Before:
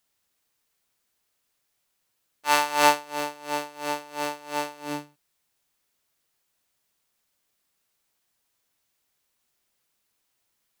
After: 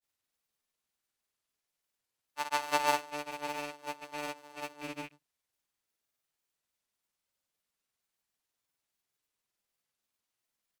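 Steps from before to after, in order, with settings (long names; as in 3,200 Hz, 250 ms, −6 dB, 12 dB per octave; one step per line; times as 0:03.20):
loose part that buzzes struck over −47 dBFS, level −25 dBFS
granular cloud, pitch spread up and down by 0 semitones
level −8.5 dB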